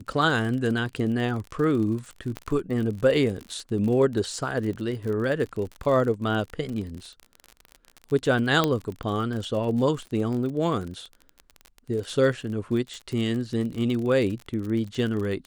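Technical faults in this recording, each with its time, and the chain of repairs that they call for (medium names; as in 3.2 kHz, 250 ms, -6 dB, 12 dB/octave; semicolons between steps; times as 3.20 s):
crackle 40 per s -31 dBFS
2.37 s: pop -18 dBFS
8.64 s: pop -8 dBFS
12.94 s: pop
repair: de-click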